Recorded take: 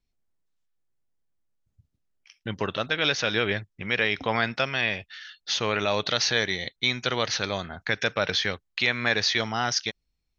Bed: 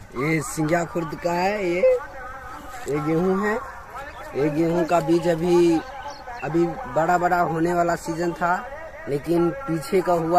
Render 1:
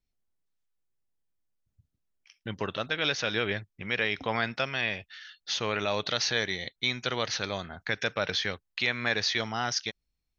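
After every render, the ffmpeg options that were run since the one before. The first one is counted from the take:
-af "volume=0.631"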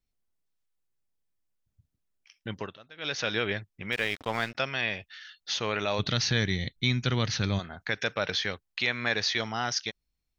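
-filter_complex "[0:a]asettb=1/sr,asplit=3[s0][s1][s2];[s0]atrim=end=3.924[s3];[s1]atrim=start=3.92:end=4.55,asetpts=PTS-STARTPTS,afade=t=in:d=0.004:c=qsin,afade=t=out:st=0.626:d=0.004:c=qsin,aeval=exprs='sgn(val(0))*max(abs(val(0))-0.00891,0)':c=same[s4];[s2]atrim=start=4.546[s5];[s3][s4]acrossfade=d=0.004:c1=hsin:c2=qsin[s6];[s6][s5]acrossfade=d=0.004:c1=qsin:c2=hsin,asplit=3[s7][s8][s9];[s7]afade=t=out:st=5.98:d=0.02[s10];[s8]asubboost=boost=6.5:cutoff=220,afade=t=in:st=5.98:d=0.02,afade=t=out:st=7.58:d=0.02[s11];[s9]afade=t=in:st=7.58:d=0.02[s12];[s10][s11][s12]amix=inputs=3:normalize=0,asplit=3[s13][s14][s15];[s13]atrim=end=2.78,asetpts=PTS-STARTPTS,afade=t=out:st=2.53:d=0.25:silence=0.105925[s16];[s14]atrim=start=2.78:end=2.95,asetpts=PTS-STARTPTS,volume=0.106[s17];[s15]atrim=start=2.95,asetpts=PTS-STARTPTS,afade=t=in:d=0.25:silence=0.105925[s18];[s16][s17][s18]concat=n=3:v=0:a=1"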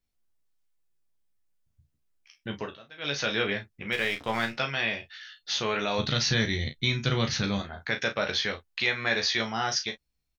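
-filter_complex "[0:a]asplit=2[s0][s1];[s1]adelay=35,volume=0.355[s2];[s0][s2]amix=inputs=2:normalize=0,aecho=1:1:14|27:0.531|0.141"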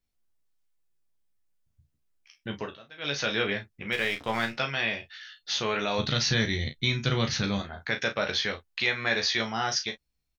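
-af anull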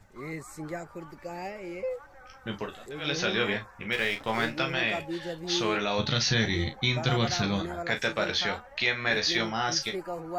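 -filter_complex "[1:a]volume=0.168[s0];[0:a][s0]amix=inputs=2:normalize=0"

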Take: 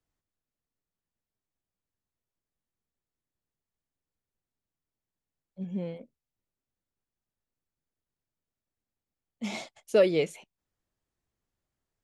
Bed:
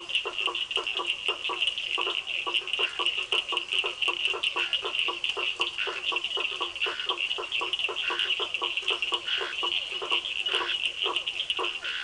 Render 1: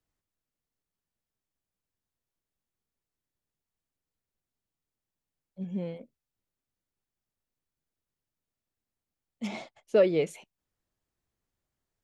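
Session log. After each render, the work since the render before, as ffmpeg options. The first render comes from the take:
-filter_complex "[0:a]asettb=1/sr,asplit=3[s0][s1][s2];[s0]atrim=end=9.474[s3];[s1]atrim=start=9.47:end=10.27,asetpts=PTS-STARTPTS,afade=t=in:d=0.004:c=qsin,afade=t=out:st=0.796:d=0.004:c=qsin,aemphasis=mode=reproduction:type=75kf[s4];[s2]atrim=start=10.266[s5];[s3][s4]acrossfade=d=0.004:c1=hsin:c2=qsin[s6];[s6][s5]acrossfade=d=0.004:c1=qsin:c2=hsin"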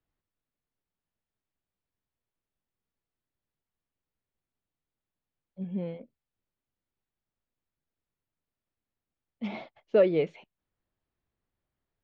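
-af "lowpass=f=4400:w=0.5412,lowpass=f=4400:w=1.3066,aemphasis=mode=reproduction:type=50fm"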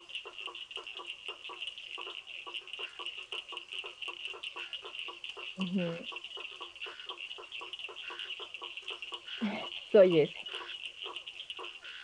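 -filter_complex "[1:a]volume=0.2[s0];[0:a][s0]amix=inputs=2:normalize=0"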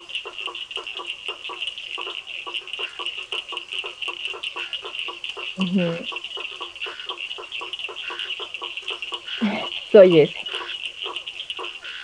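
-af "volume=3.98,alimiter=limit=0.891:level=0:latency=1"

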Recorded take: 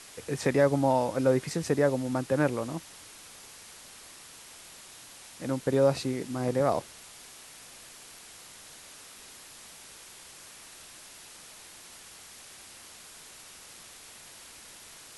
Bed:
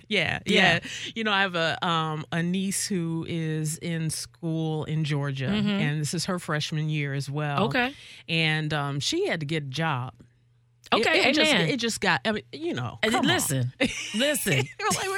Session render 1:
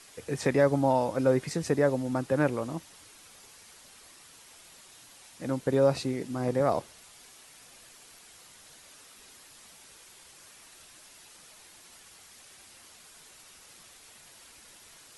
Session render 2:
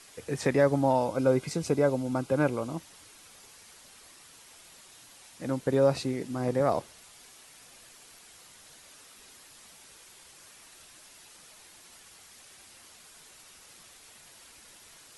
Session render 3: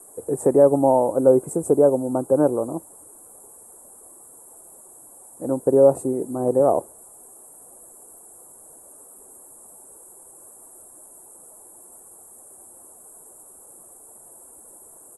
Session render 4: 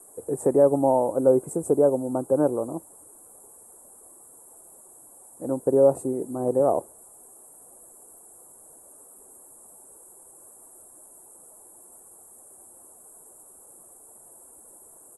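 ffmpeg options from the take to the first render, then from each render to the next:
-af "afftdn=nr=6:nf=-50"
-filter_complex "[0:a]asettb=1/sr,asplit=3[s0][s1][s2];[s0]atrim=end=0.974[s3];[s1]atrim=start=0.97:end=2.76,asetpts=PTS-STARTPTS,afade=t=in:d=0.004:c=qsin,afade=t=out:st=1.786:d=0.004:c=qsin,asuperstop=centerf=1800:order=8:qfactor=6.6[s4];[s2]atrim=start=2.756[s5];[s3][s4]acrossfade=d=0.004:c1=hsin:c2=qsin[s6];[s6][s5]acrossfade=d=0.004:c1=qsin:c2=hsin"
-af "firequalizer=gain_entry='entry(150,0);entry(360,11);entry(830,7);entry(2100,-24);entry(3400,-27);entry(5000,-28);entry(8000,11)':delay=0.05:min_phase=1"
-af "volume=0.668"

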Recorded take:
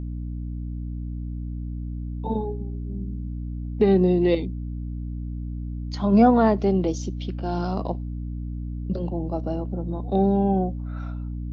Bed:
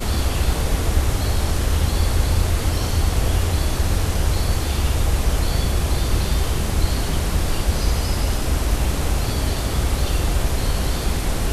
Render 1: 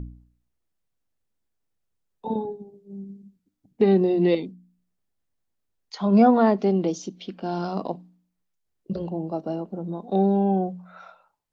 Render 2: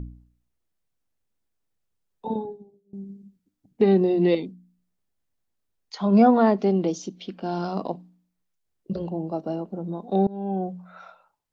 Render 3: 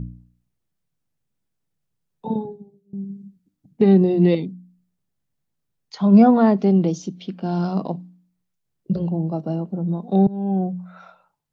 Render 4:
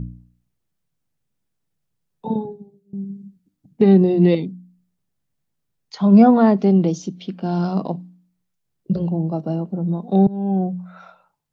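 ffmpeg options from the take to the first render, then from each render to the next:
-af "bandreject=f=60:t=h:w=4,bandreject=f=120:t=h:w=4,bandreject=f=180:t=h:w=4,bandreject=f=240:t=h:w=4,bandreject=f=300:t=h:w=4"
-filter_complex "[0:a]asplit=3[s0][s1][s2];[s0]atrim=end=2.93,asetpts=PTS-STARTPTS,afade=t=out:st=2.26:d=0.67:silence=0.0794328[s3];[s1]atrim=start=2.93:end=10.27,asetpts=PTS-STARTPTS,afade=t=in:d=0.004:c=hsin:silence=0.0794328,afade=t=out:st=7.336:d=0.004:c=hsin:silence=0.0630957[s4];[s2]atrim=start=10.27,asetpts=PTS-STARTPTS,afade=t=in:d=0.5:silence=0.0630957[s5];[s3][s4][s5]concat=n=3:v=0:a=1"
-af "equalizer=f=150:t=o:w=0.97:g=12"
-af "volume=1.19,alimiter=limit=0.708:level=0:latency=1"

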